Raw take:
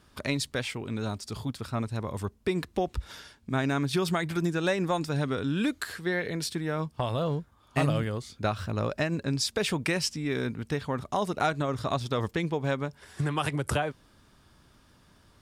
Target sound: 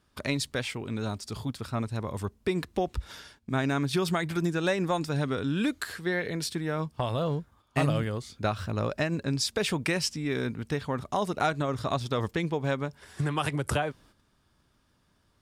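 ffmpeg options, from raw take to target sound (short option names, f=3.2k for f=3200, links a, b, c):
-af "agate=range=-9dB:threshold=-56dB:ratio=16:detection=peak"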